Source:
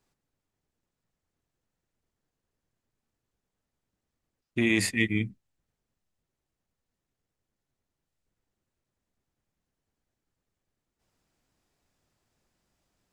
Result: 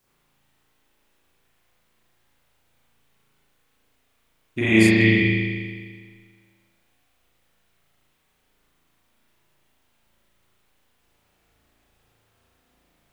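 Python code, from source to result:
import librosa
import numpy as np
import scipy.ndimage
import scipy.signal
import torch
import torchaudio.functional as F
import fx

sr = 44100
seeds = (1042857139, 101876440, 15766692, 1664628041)

y = fx.dmg_noise_colour(x, sr, seeds[0], colour='white', level_db=-74.0)
y = fx.rev_spring(y, sr, rt60_s=1.7, pass_ms=(36,), chirp_ms=50, drr_db=-9.0)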